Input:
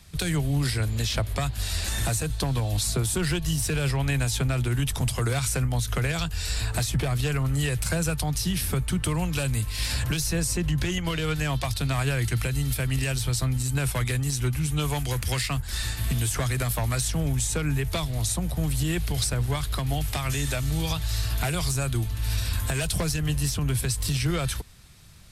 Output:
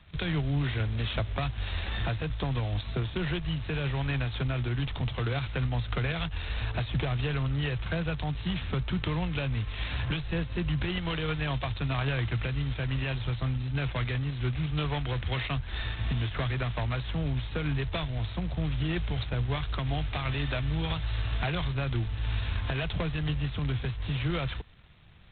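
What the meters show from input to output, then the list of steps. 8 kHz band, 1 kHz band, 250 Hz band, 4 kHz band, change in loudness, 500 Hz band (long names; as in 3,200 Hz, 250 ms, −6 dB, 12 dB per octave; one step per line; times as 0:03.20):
below −40 dB, −3.0 dB, −4.0 dB, −5.5 dB, −5.0 dB, −3.5 dB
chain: speech leveller 2 s
level −4 dB
G.726 16 kbit/s 8,000 Hz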